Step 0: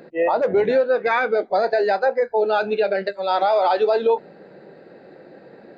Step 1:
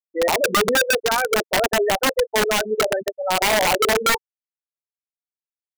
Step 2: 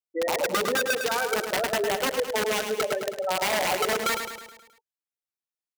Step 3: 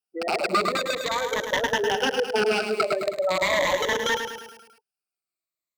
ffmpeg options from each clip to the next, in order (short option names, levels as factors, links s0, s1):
-af "bandreject=f=50.03:t=h:w=4,bandreject=f=100.06:t=h:w=4,bandreject=f=150.09:t=h:w=4,afftfilt=real='re*gte(hypot(re,im),0.251)':imag='im*gte(hypot(re,im),0.251)':win_size=1024:overlap=0.75,aeval=exprs='(mod(4.47*val(0)+1,2)-1)/4.47':c=same"
-filter_complex "[0:a]acompressor=threshold=0.0794:ratio=3,highpass=f=77:p=1,asplit=2[s0][s1];[s1]aecho=0:1:106|212|318|424|530|636:0.447|0.232|0.121|0.0628|0.0327|0.017[s2];[s0][s2]amix=inputs=2:normalize=0,volume=0.708"
-filter_complex "[0:a]afftfilt=real='re*pow(10,15/40*sin(2*PI*(1.1*log(max(b,1)*sr/1024/100)/log(2)-(-0.42)*(pts-256)/sr)))':imag='im*pow(10,15/40*sin(2*PI*(1.1*log(max(b,1)*sr/1024/100)/log(2)-(-0.42)*(pts-256)/sr)))':win_size=1024:overlap=0.75,acrossover=split=6400[s0][s1];[s1]acompressor=threshold=0.00447:ratio=4:attack=1:release=60[s2];[s0][s2]amix=inputs=2:normalize=0"